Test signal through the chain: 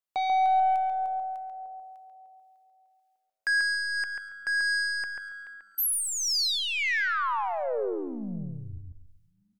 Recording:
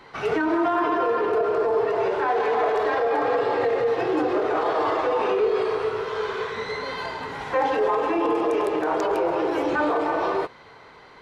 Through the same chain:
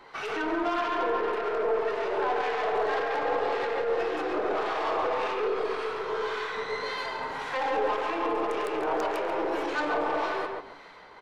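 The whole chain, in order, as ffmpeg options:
-filter_complex "[0:a]aeval=exprs='0.237*(cos(1*acos(clip(val(0)/0.237,-1,1)))-cos(1*PI/2))+0.00188*(cos(2*acos(clip(val(0)/0.237,-1,1)))-cos(2*PI/2))+0.00376*(cos(4*acos(clip(val(0)/0.237,-1,1)))-cos(4*PI/2))+0.0335*(cos(5*acos(clip(val(0)/0.237,-1,1)))-cos(5*PI/2))+0.00473*(cos(8*acos(clip(val(0)/0.237,-1,1)))-cos(8*PI/2))':c=same,asplit=2[s0][s1];[s1]asplit=3[s2][s3][s4];[s2]adelay=248,afreqshift=-100,volume=0.075[s5];[s3]adelay=496,afreqshift=-200,volume=0.0347[s6];[s4]adelay=744,afreqshift=-300,volume=0.0158[s7];[s5][s6][s7]amix=inputs=3:normalize=0[s8];[s0][s8]amix=inputs=2:normalize=0,acrossover=split=1200[s9][s10];[s9]aeval=exprs='val(0)*(1-0.5/2+0.5/2*cos(2*PI*1.8*n/s))':c=same[s11];[s10]aeval=exprs='val(0)*(1-0.5/2-0.5/2*cos(2*PI*1.8*n/s))':c=same[s12];[s11][s12]amix=inputs=2:normalize=0,equalizer=f=110:w=0.38:g=-11,asplit=2[s13][s14];[s14]adelay=139,lowpass=f=2500:p=1,volume=0.708,asplit=2[s15][s16];[s16]adelay=139,lowpass=f=2500:p=1,volume=0.22,asplit=2[s17][s18];[s18]adelay=139,lowpass=f=2500:p=1,volume=0.22[s19];[s15][s17][s19]amix=inputs=3:normalize=0[s20];[s13][s20]amix=inputs=2:normalize=0,volume=0.631"

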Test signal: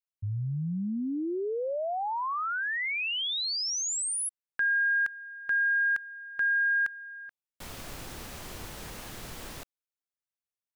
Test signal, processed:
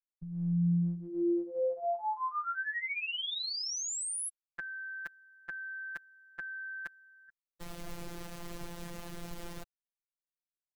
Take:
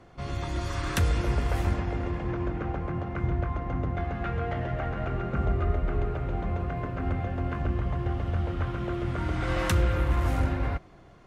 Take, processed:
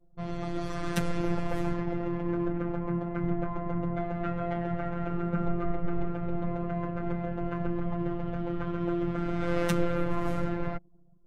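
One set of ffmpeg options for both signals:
-af "anlmdn=0.1,tiltshelf=f=760:g=3.5,afftfilt=real='hypot(re,im)*cos(PI*b)':imag='0':win_size=1024:overlap=0.75,volume=1.19"

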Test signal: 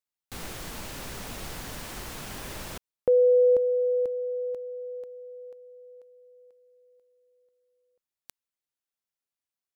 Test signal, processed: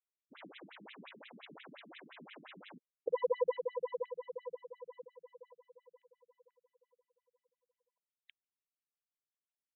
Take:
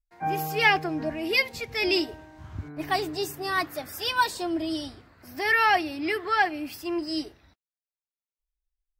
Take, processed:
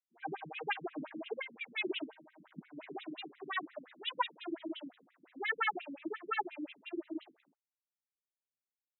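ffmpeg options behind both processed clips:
-af "aeval=exprs='if(lt(val(0),0),0.251*val(0),val(0))':c=same,afftfilt=real='re*between(b*sr/1024,210*pow(2900/210,0.5+0.5*sin(2*PI*5.7*pts/sr))/1.41,210*pow(2900/210,0.5+0.5*sin(2*PI*5.7*pts/sr))*1.41)':imag='im*between(b*sr/1024,210*pow(2900/210,0.5+0.5*sin(2*PI*5.7*pts/sr))/1.41,210*pow(2900/210,0.5+0.5*sin(2*PI*5.7*pts/sr))*1.41)':win_size=1024:overlap=0.75,volume=0.841"

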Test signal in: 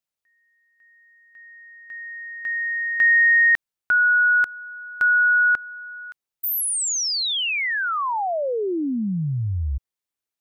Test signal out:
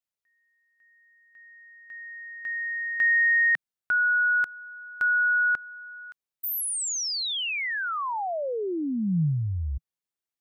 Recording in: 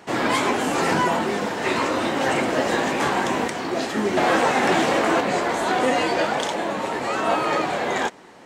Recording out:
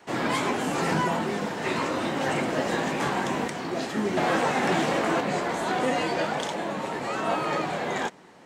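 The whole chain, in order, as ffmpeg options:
-af "adynamicequalizer=threshold=0.00631:dfrequency=160:dqfactor=2:tfrequency=160:tqfactor=2:attack=5:release=100:ratio=0.375:range=3.5:mode=boostabove:tftype=bell,volume=0.531"

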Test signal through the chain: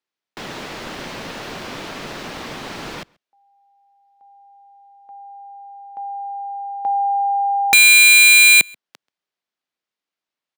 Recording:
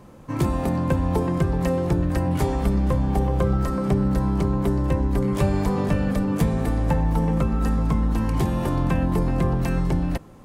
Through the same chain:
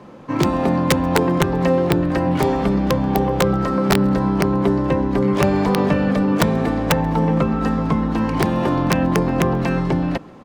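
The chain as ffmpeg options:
-filter_complex "[0:a]acrossover=split=150 5400:gain=0.158 1 0.126[s0][s1][s2];[s0][s1][s2]amix=inputs=3:normalize=0,aeval=exprs='(mod(5.01*val(0)+1,2)-1)/5.01':c=same,asplit=2[s3][s4];[s4]adelay=134.1,volume=0.0398,highshelf=f=4000:g=-3.02[s5];[s3][s5]amix=inputs=2:normalize=0,volume=2.37"

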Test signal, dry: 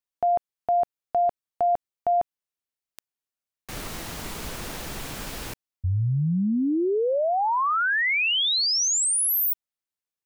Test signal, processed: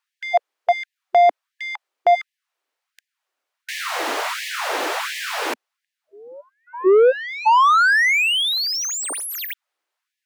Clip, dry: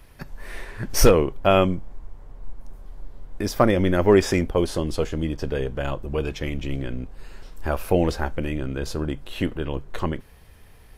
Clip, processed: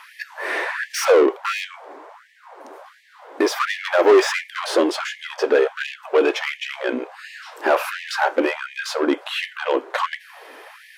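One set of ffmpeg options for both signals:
-filter_complex "[0:a]asplit=2[s0][s1];[s1]highpass=f=720:p=1,volume=28.2,asoftclip=type=tanh:threshold=0.631[s2];[s0][s2]amix=inputs=2:normalize=0,lowpass=f=1100:p=1,volume=0.501,afftfilt=real='re*gte(b*sr/1024,250*pow(1700/250,0.5+0.5*sin(2*PI*1.4*pts/sr)))':imag='im*gte(b*sr/1024,250*pow(1700/250,0.5+0.5*sin(2*PI*1.4*pts/sr)))':win_size=1024:overlap=0.75"

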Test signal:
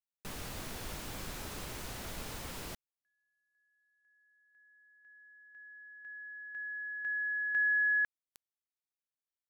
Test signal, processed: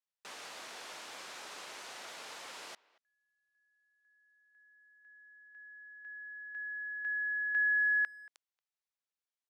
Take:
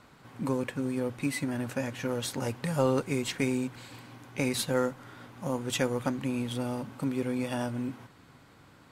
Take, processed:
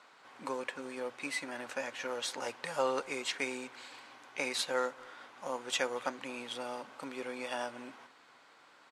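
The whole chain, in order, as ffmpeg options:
-filter_complex "[0:a]highpass=610,lowpass=7200,asplit=2[s0][s1];[s1]adelay=230,highpass=300,lowpass=3400,asoftclip=type=hard:threshold=0.0447,volume=0.0794[s2];[s0][s2]amix=inputs=2:normalize=0"

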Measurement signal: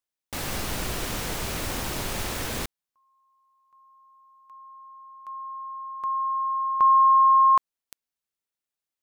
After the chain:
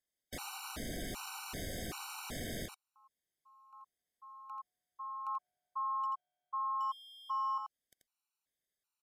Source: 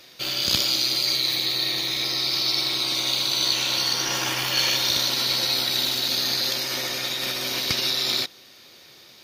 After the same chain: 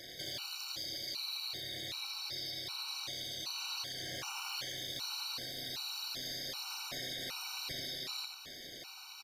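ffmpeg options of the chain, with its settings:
-filter_complex "[0:a]acompressor=threshold=0.02:ratio=4:release=236:detection=peak,volume=33.5,asoftclip=hard,volume=0.0299,tremolo=f=230:d=0.947,alimiter=level_in=4.22:limit=0.0631:level=0:latency=1,volume=0.237,asplit=2[s0][s1];[s1]aecho=0:1:85:0.596[s2];[s0][s2]amix=inputs=2:normalize=0,aresample=32000,aresample=44100,afftfilt=real='re*gt(sin(2*PI*1.3*pts/sr)*(1-2*mod(floor(b*sr/1024/760),2)),0)':imag='im*gt(sin(2*PI*1.3*pts/sr)*(1-2*mod(floor(b*sr/1024/760),2)),0)':win_size=1024:overlap=0.75,volume=1.88"

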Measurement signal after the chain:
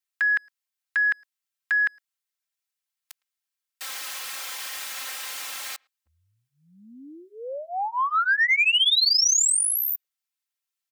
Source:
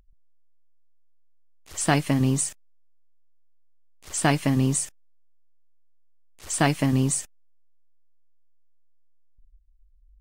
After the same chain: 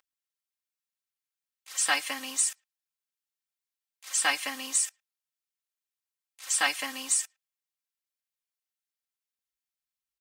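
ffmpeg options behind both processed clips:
-filter_complex "[0:a]highpass=1300,acrossover=split=7900[s0][s1];[s1]acompressor=threshold=0.0355:ratio=4:attack=1:release=60[s2];[s0][s2]amix=inputs=2:normalize=0,aecho=1:1:3.8:0.99,acontrast=88,asplit=2[s3][s4];[s4]adelay=110,highpass=300,lowpass=3400,asoftclip=type=hard:threshold=0.188,volume=0.0316[s5];[s3][s5]amix=inputs=2:normalize=0,volume=0.447"

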